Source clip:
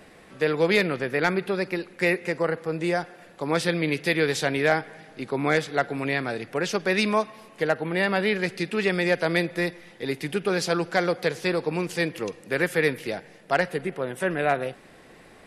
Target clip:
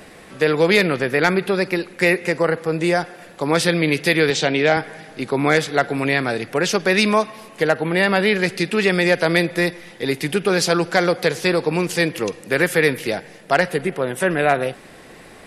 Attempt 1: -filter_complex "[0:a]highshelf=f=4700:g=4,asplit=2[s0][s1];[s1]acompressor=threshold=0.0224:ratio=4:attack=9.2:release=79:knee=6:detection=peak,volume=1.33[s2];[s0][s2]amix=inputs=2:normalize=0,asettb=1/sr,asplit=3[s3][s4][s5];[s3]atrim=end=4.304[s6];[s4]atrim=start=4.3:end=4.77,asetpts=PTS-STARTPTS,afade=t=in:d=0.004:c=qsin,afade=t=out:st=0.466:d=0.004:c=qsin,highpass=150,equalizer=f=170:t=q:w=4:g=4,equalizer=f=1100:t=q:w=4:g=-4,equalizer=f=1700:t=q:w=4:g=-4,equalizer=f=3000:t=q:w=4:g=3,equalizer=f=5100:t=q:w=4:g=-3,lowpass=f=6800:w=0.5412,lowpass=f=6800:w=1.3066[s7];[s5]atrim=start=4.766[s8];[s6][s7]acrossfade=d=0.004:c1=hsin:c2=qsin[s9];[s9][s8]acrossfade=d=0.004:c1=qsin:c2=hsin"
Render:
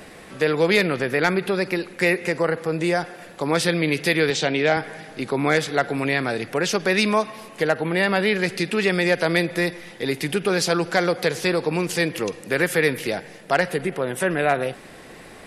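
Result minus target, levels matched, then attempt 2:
compression: peak gain reduction +9 dB
-filter_complex "[0:a]highshelf=f=4700:g=4,asplit=2[s0][s1];[s1]acompressor=threshold=0.0891:ratio=4:attack=9.2:release=79:knee=6:detection=peak,volume=1.33[s2];[s0][s2]amix=inputs=2:normalize=0,asettb=1/sr,asplit=3[s3][s4][s5];[s3]atrim=end=4.304[s6];[s4]atrim=start=4.3:end=4.77,asetpts=PTS-STARTPTS,afade=t=in:d=0.004:c=qsin,afade=t=out:st=0.466:d=0.004:c=qsin,highpass=150,equalizer=f=170:t=q:w=4:g=4,equalizer=f=1100:t=q:w=4:g=-4,equalizer=f=1700:t=q:w=4:g=-4,equalizer=f=3000:t=q:w=4:g=3,equalizer=f=5100:t=q:w=4:g=-3,lowpass=f=6800:w=0.5412,lowpass=f=6800:w=1.3066[s7];[s5]atrim=start=4.766[s8];[s6][s7]acrossfade=d=0.004:c1=hsin:c2=qsin[s9];[s9][s8]acrossfade=d=0.004:c1=qsin:c2=hsin"

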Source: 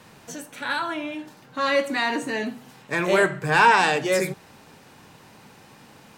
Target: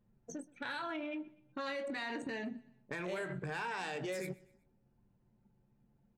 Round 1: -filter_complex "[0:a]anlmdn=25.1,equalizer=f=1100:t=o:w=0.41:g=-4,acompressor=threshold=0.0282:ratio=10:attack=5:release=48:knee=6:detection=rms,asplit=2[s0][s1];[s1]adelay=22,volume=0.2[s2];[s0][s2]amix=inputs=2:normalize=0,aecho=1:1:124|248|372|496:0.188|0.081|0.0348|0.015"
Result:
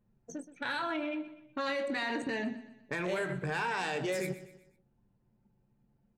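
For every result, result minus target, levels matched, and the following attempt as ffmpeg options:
compression: peak gain reduction -6 dB; echo-to-direct +8 dB
-filter_complex "[0:a]anlmdn=25.1,equalizer=f=1100:t=o:w=0.41:g=-4,acompressor=threshold=0.0133:ratio=10:attack=5:release=48:knee=6:detection=rms,asplit=2[s0][s1];[s1]adelay=22,volume=0.2[s2];[s0][s2]amix=inputs=2:normalize=0,aecho=1:1:124|248|372|496:0.188|0.081|0.0348|0.015"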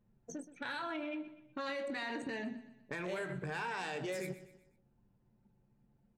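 echo-to-direct +8 dB
-filter_complex "[0:a]anlmdn=25.1,equalizer=f=1100:t=o:w=0.41:g=-4,acompressor=threshold=0.0133:ratio=10:attack=5:release=48:knee=6:detection=rms,asplit=2[s0][s1];[s1]adelay=22,volume=0.2[s2];[s0][s2]amix=inputs=2:normalize=0,aecho=1:1:124|248|372:0.075|0.0322|0.0139"

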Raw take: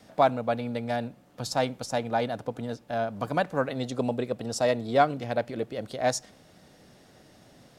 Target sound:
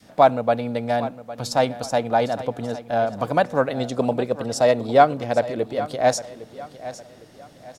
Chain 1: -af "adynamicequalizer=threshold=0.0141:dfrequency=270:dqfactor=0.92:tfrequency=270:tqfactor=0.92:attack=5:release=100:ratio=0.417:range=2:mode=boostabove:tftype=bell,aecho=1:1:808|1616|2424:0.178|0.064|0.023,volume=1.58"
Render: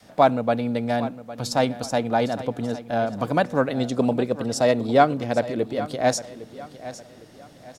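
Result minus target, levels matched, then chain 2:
250 Hz band +4.5 dB
-af "adynamicequalizer=threshold=0.0141:dfrequency=650:dqfactor=0.92:tfrequency=650:tqfactor=0.92:attack=5:release=100:ratio=0.417:range=2:mode=boostabove:tftype=bell,aecho=1:1:808|1616|2424:0.178|0.064|0.023,volume=1.58"

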